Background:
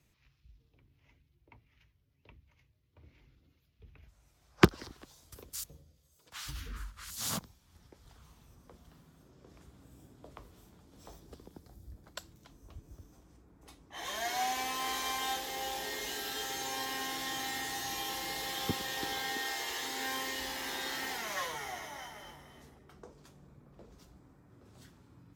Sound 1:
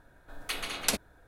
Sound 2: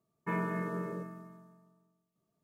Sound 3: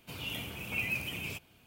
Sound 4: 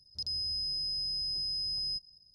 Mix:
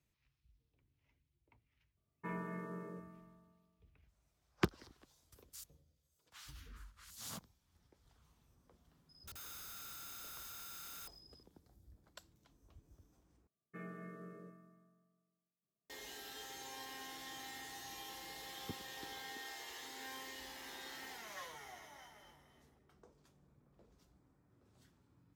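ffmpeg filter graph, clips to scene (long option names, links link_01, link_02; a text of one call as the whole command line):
ffmpeg -i bed.wav -i cue0.wav -i cue1.wav -i cue2.wav -i cue3.wav -filter_complex "[2:a]asplit=2[link_01][link_02];[0:a]volume=-12dB[link_03];[4:a]aeval=exprs='(mod(133*val(0)+1,2)-1)/133':channel_layout=same[link_04];[link_02]asuperstop=centerf=940:order=20:qfactor=5.3[link_05];[link_03]asplit=2[link_06][link_07];[link_06]atrim=end=13.474[link_08];[link_05]atrim=end=2.43,asetpts=PTS-STARTPTS,volume=-15dB[link_09];[link_07]atrim=start=15.896[link_10];[link_01]atrim=end=2.43,asetpts=PTS-STARTPTS,volume=-9.5dB,afade=type=in:duration=0.004:curve=hsin,afade=type=out:start_time=2.426:duration=0.004:curve=hsin,adelay=1970[link_11];[link_04]atrim=end=2.34,asetpts=PTS-STARTPTS,volume=-3.5dB,afade=type=in:duration=0.004:curve=hsin,afade=type=out:start_time=2.336:duration=0.004:curve=hsin,adelay=9090[link_12];[link_08][link_09]acrossfade=duration=0.004:curve1=hsin:curve2=hsin[link_13];[link_13][link_10]acrossfade=duration=0.004:curve1=hsin:curve2=hsin[link_14];[link_14][link_11][link_12]amix=inputs=3:normalize=0" out.wav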